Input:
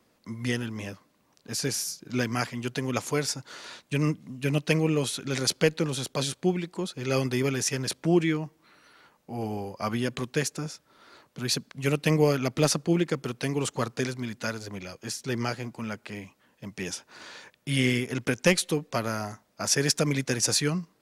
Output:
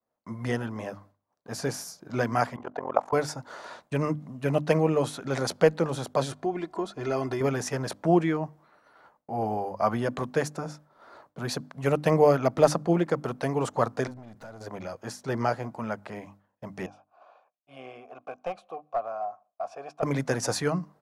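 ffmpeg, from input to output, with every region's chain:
-filter_complex "[0:a]asettb=1/sr,asplit=3[s0][s1][s2];[s0]atrim=end=2.564[s3];[s1]atrim=start=2.56:end=3.13,asetpts=PTS-STARTPTS,afade=t=in:d=0.004:c=qsin,afade=t=out:st=0.566:d=0.004:c=qsin,tremolo=f=44:d=0.974,bandpass=f=800:t=q:w=1.6,acontrast=70[s4];[s2]atrim=start=3.126[s5];[s3][s4]acrossfade=d=0.004:c1=hsin:c2=qsin[s6];[s6][s5]acrossfade=d=0.004:c1=qsin:c2=hsin,asettb=1/sr,asplit=3[s7][s8][s9];[s7]atrim=end=6.314[s10];[s8]atrim=start=6.31:end=7.41,asetpts=PTS-STARTPTS,afade=t=in:d=0.004:c=qsin,afade=t=out:st=1.096:d=0.004:c=qsin,highshelf=f=12000:g=-10.5,acompressor=threshold=0.0501:ratio=4:attack=3.2:release=140:knee=1:detection=peak,aecho=1:1:2.9:0.58,atrim=end_sample=48510[s11];[s9]atrim=start=7.406[s12];[s10][s11]acrossfade=d=0.004:c1=hsin:c2=qsin[s13];[s13][s12]acrossfade=d=0.004:c1=qsin:c2=hsin,asettb=1/sr,asplit=3[s14][s15][s16];[s14]atrim=end=14.074[s17];[s15]atrim=start=14.07:end=14.61,asetpts=PTS-STARTPTS,afade=t=in:d=0.004:c=qsin,afade=t=out:st=0.536:d=0.004:c=qsin,lowshelf=f=120:g=9,acompressor=threshold=0.0158:ratio=12:attack=3.2:release=140:knee=1:detection=peak,aeval=exprs='(tanh(126*val(0)+0.35)-tanh(0.35))/126':c=same[s18];[s16]atrim=start=14.606[s19];[s17][s18]acrossfade=d=0.004:c1=hsin:c2=qsin[s20];[s20][s19]acrossfade=d=0.004:c1=qsin:c2=hsin,asettb=1/sr,asplit=3[s21][s22][s23];[s21]atrim=end=16.864[s24];[s22]atrim=start=16.86:end=20.03,asetpts=PTS-STARTPTS,afade=t=in:d=0.004:c=qsin,afade=t=out:st=3.166:d=0.004:c=qsin,asplit=3[s25][s26][s27];[s25]bandpass=f=730:t=q:w=8,volume=1[s28];[s26]bandpass=f=1090:t=q:w=8,volume=0.501[s29];[s27]bandpass=f=2440:t=q:w=8,volume=0.355[s30];[s28][s29][s30]amix=inputs=3:normalize=0,aeval=exprs='clip(val(0),-1,0.0178)':c=same[s31];[s23]atrim=start=20.026[s32];[s24][s31]acrossfade=d=0.004:c1=hsin:c2=qsin[s33];[s33][s32]acrossfade=d=0.004:c1=qsin:c2=hsin,firequalizer=gain_entry='entry(370,0);entry(650,10);entry(2500,-8)':delay=0.05:min_phase=1,agate=range=0.0224:threshold=0.00316:ratio=3:detection=peak,bandreject=f=50:t=h:w=6,bandreject=f=100:t=h:w=6,bandreject=f=150:t=h:w=6,bandreject=f=200:t=h:w=6,bandreject=f=250:t=h:w=6,bandreject=f=300:t=h:w=6"

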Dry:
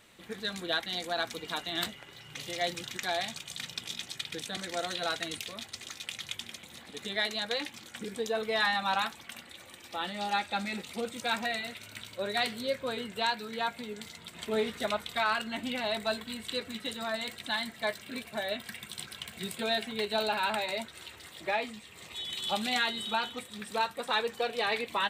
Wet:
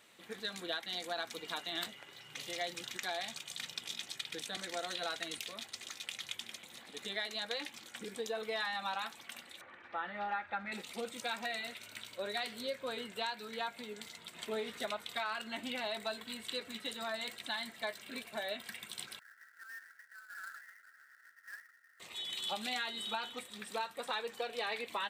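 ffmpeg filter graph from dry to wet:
-filter_complex "[0:a]asettb=1/sr,asplit=3[s0][s1][s2];[s0]atrim=end=9.614[s3];[s1]atrim=start=9.61:end=10.72,asetpts=PTS-STARTPTS,afade=t=in:d=0.004:c=qsin,afade=t=out:st=1.106:d=0.004:c=qsin,lowpass=f=1600:t=q:w=2.2,asubboost=boost=11.5:cutoff=120[s4];[s2]atrim=start=10.716[s5];[s3][s4]acrossfade=d=0.004:c1=hsin:c2=qsin[s6];[s6][s5]acrossfade=d=0.004:c1=qsin:c2=hsin,asettb=1/sr,asplit=3[s7][s8][s9];[s7]atrim=end=19.194[s10];[s8]atrim=start=19.19:end=22,asetpts=PTS-STARTPTS,afade=t=in:d=0.004:c=qsin,afade=t=out:st=2.806:d=0.004:c=qsin,acompressor=threshold=0.0178:ratio=3:attack=3.2:release=140:knee=1:detection=peak,asuperpass=centerf=1600:order=12:qfactor=2.7,acrusher=bits=2:mode=log:mix=0:aa=0.000001[s11];[s9]atrim=start=21.996[s12];[s10][s11]acrossfade=d=0.004:c1=hsin:c2=qsin[s13];[s13][s12]acrossfade=d=0.004:c1=qsin:c2=hsin,highpass=f=310:p=1,acompressor=threshold=0.0282:ratio=6,volume=0.708"

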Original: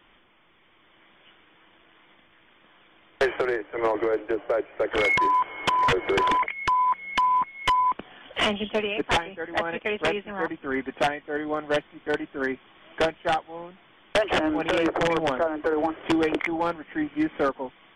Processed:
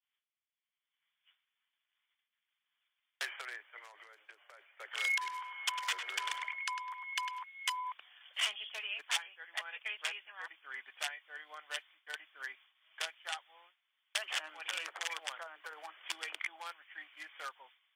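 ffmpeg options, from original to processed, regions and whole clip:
-filter_complex "[0:a]asettb=1/sr,asplit=3[s0][s1][s2];[s0]atrim=end=3.784[s3];[s1]atrim=start=3.78:end=4.61,asetpts=PTS-STARTPTS,afade=t=in:d=0.004:c=qsin,afade=t=out:st=0.826:d=0.004:c=qsin,equalizer=f=6700:w=0.87:g=4.5,acompressor=threshold=0.0282:ratio=6:attack=3.2:release=140:knee=1:detection=peak[s4];[s2]atrim=start=4.606[s5];[s3][s4]acrossfade=d=0.004:c1=hsin:c2=qsin[s6];[s6][s5]acrossfade=d=0.004:c1=qsin:c2=hsin,asettb=1/sr,asplit=3[s7][s8][s9];[s7]atrim=end=5.164[s10];[s8]atrim=start=5.16:end=7.42,asetpts=PTS-STARTPTS,afade=t=in:d=0.004:c=qsin,afade=t=out:st=2.256:d=0.004:c=qsin,asplit=2[s11][s12];[s12]adelay=102,lowpass=f=3500:p=1,volume=0.473,asplit=2[s13][s14];[s14]adelay=102,lowpass=f=3500:p=1,volume=0.28,asplit=2[s15][s16];[s16]adelay=102,lowpass=f=3500:p=1,volume=0.28,asplit=2[s17][s18];[s18]adelay=102,lowpass=f=3500:p=1,volume=0.28[s19];[s11][s13][s15][s17][s19]amix=inputs=5:normalize=0,atrim=end_sample=99666,aeval=exprs='val(0)+0.00708*(sin(2*PI*60*n/s)+sin(2*PI*2*60*n/s)/2+sin(2*PI*3*60*n/s)/3+sin(2*PI*4*60*n/s)/4+sin(2*PI*5*60*n/s)/5)':c=same[s20];[s9]atrim=start=7.416[s21];[s10][s20]acrossfade=d=0.004:c1=hsin:c2=qsin[s22];[s22][s21]acrossfade=d=0.004:c1=qsin:c2=hsin,aderivative,agate=range=0.0224:threshold=0.00141:ratio=3:detection=peak,highpass=890,volume=1.12"

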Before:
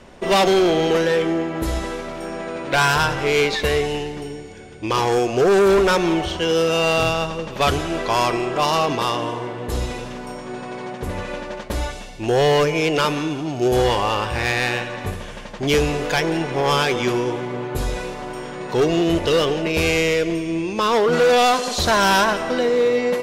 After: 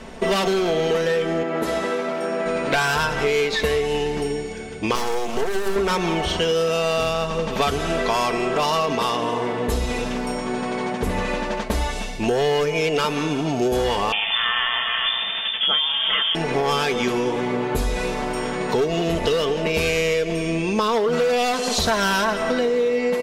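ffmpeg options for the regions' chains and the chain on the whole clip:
-filter_complex "[0:a]asettb=1/sr,asplit=3[s0][s1][s2];[s0]atrim=end=1.434[s3];[s1]atrim=start=1.43:end=2.46,asetpts=PTS-STARTPTS,afade=t=in:d=0.004:c=qsin,afade=t=out:st=1.026:d=0.004:c=qsin,highpass=240,highshelf=f=3500:g=-8.5[s4];[s2]atrim=start=2.456[s5];[s3][s4]acrossfade=d=0.004:c1=hsin:c2=qsin[s6];[s6][s5]acrossfade=d=0.004:c1=qsin:c2=hsin,asettb=1/sr,asplit=3[s7][s8][s9];[s7]atrim=end=4.954[s10];[s8]atrim=start=4.95:end=5.76,asetpts=PTS-STARTPTS,afade=t=in:d=0.004:c=qsin,afade=t=out:st=0.806:d=0.004:c=qsin,highshelf=f=7200:g=9,bandreject=f=50:t=h:w=6,bandreject=f=100:t=h:w=6,bandreject=f=150:t=h:w=6,bandreject=f=200:t=h:w=6,bandreject=f=250:t=h:w=6,bandreject=f=300:t=h:w=6,bandreject=f=350:t=h:w=6,bandreject=f=400:t=h:w=6,aeval=exprs='max(val(0),0)':c=same[s11];[s9]atrim=start=5.756[s12];[s10][s11]acrossfade=d=0.004:c1=hsin:c2=qsin[s13];[s13][s12]acrossfade=d=0.004:c1=qsin:c2=hsin,asettb=1/sr,asplit=3[s14][s15][s16];[s14]atrim=end=14.124[s17];[s15]atrim=start=14.12:end=16.35,asetpts=PTS-STARTPTS,afade=t=in:d=0.004:c=qsin,afade=t=out:st=2.226:d=0.004:c=qsin,lowpass=f=3100:t=q:w=0.5098,lowpass=f=3100:t=q:w=0.6013,lowpass=f=3100:t=q:w=0.9,lowpass=f=3100:t=q:w=2.563,afreqshift=-3600,aecho=1:1:400:0.376,atrim=end_sample=98343[s18];[s16]atrim=start=16.346[s19];[s17][s18]acrossfade=d=0.004:c1=hsin:c2=qsin[s20];[s20][s19]acrossfade=d=0.004:c1=qsin:c2=hsin,aecho=1:1:4.5:0.49,acompressor=threshold=0.0631:ratio=6,volume=1.88"

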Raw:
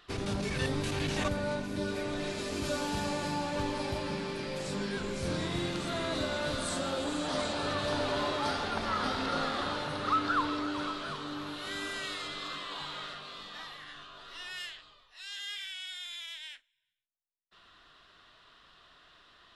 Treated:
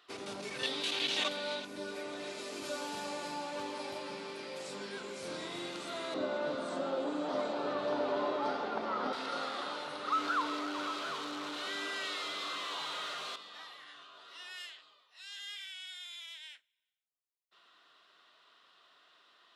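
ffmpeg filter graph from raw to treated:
-filter_complex "[0:a]asettb=1/sr,asplit=3[s0][s1][s2];[s0]atrim=end=0.634[s3];[s1]atrim=start=0.63:end=1.65,asetpts=PTS-STARTPTS,afade=t=in:d=0.004:c=qsin,afade=t=out:st=1.016:d=0.004:c=qsin,highpass=f=160:w=0.5412,highpass=f=160:w=1.3066,equalizer=f=3500:t=o:w=1:g=14[s4];[s2]atrim=start=1.646[s5];[s3][s4]acrossfade=d=0.004:c1=hsin:c2=qsin[s6];[s6][s5]acrossfade=d=0.004:c1=qsin:c2=hsin,asettb=1/sr,asplit=3[s7][s8][s9];[s7]atrim=end=6.144[s10];[s8]atrim=start=6.14:end=9.13,asetpts=PTS-STARTPTS,afade=t=in:d=0.004:c=qsin,afade=t=out:st=2.986:d=0.004:c=qsin,highpass=110,lowpass=6500,tiltshelf=f=1400:g=8[s11];[s9]atrim=start=9.126[s12];[s10][s11]acrossfade=d=0.004:c1=hsin:c2=qsin[s13];[s13][s12]acrossfade=d=0.004:c1=qsin:c2=hsin,asettb=1/sr,asplit=3[s14][s15][s16];[s14]atrim=end=10.124[s17];[s15]atrim=start=10.12:end=13.36,asetpts=PTS-STARTPTS,afade=t=in:d=0.004:c=qsin,afade=t=out:st=3.236:d=0.004:c=qsin,aeval=exprs='val(0)+0.5*0.0224*sgn(val(0))':c=same,lowpass=6500[s18];[s16]atrim=start=13.356[s19];[s17][s18]acrossfade=d=0.004:c1=hsin:c2=qsin[s20];[s20][s19]acrossfade=d=0.004:c1=qsin:c2=hsin,highpass=340,bandreject=f=1700:w=15,volume=0.596"

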